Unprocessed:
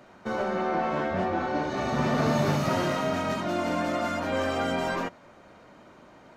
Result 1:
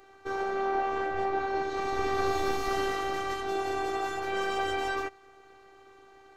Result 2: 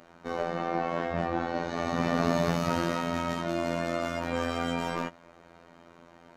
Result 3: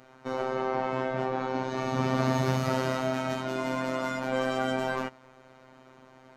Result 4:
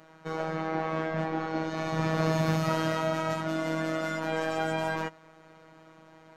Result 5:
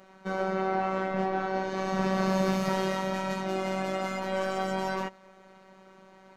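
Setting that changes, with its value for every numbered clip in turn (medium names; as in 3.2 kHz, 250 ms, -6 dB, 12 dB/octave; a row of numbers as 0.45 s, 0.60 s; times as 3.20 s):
robot voice, frequency: 390 Hz, 85 Hz, 130 Hz, 160 Hz, 190 Hz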